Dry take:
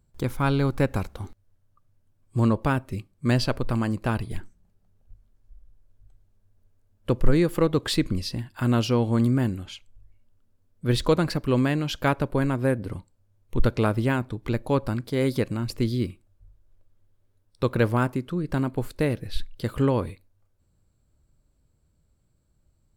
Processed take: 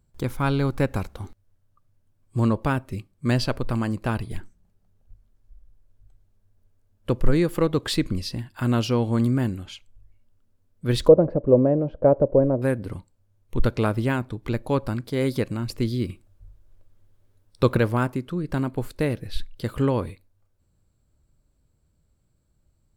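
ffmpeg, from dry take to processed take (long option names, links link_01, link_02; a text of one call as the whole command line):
ffmpeg -i in.wav -filter_complex "[0:a]asettb=1/sr,asplit=3[link_01][link_02][link_03];[link_01]atrim=end=11.084[link_04];[link_02]atrim=start=11.08:end=12.62,asetpts=PTS-STARTPTS,afade=type=in:duration=0.004:curve=qsin,afade=type=out:start_time=1.536:duration=0.004:curve=qsin,lowpass=frequency=560:width_type=q:width=4.7[link_05];[link_03]atrim=start=12.616[link_06];[link_04][link_05]acrossfade=duration=0.004:curve1=hsin:curve2=qsin[link_07];[link_07][link_06]acrossfade=duration=0.004:curve1=qsin:curve2=hsin,asettb=1/sr,asplit=3[link_08][link_09][link_10];[link_08]atrim=end=16.094[link_11];[link_09]atrim=start=16.09:end=17.78,asetpts=PTS-STARTPTS,afade=type=in:duration=0.004:curve=qsin,afade=type=out:start_time=1.686:duration=0.004:curve=qsin,acontrast=38[link_12];[link_10]atrim=start=17.776[link_13];[link_11][link_12]acrossfade=duration=0.004:curve1=hsin:curve2=qsin[link_14];[link_14][link_13]acrossfade=duration=0.004:curve1=qsin:curve2=hsin" out.wav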